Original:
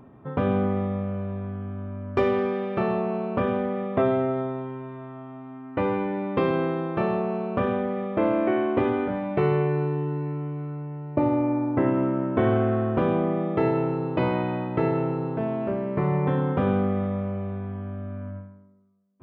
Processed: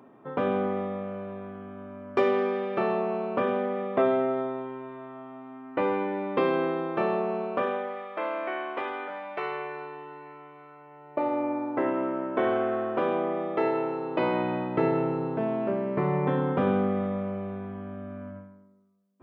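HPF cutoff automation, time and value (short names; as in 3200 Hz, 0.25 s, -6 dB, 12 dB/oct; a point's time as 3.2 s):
7.4 s 280 Hz
8.07 s 850 Hz
10.76 s 850 Hz
11.45 s 400 Hz
14.04 s 400 Hz
14.5 s 180 Hz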